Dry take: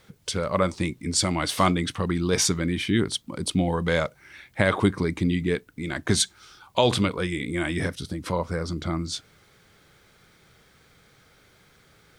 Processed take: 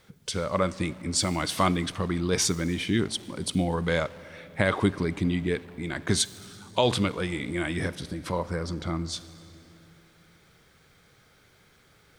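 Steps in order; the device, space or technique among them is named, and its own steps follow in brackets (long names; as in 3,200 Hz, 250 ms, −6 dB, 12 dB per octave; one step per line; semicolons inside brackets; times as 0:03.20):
saturated reverb return (on a send at −10.5 dB: convolution reverb RT60 2.2 s, pre-delay 42 ms + soft clipping −30 dBFS, distortion −6 dB)
on the sum: level −2.5 dB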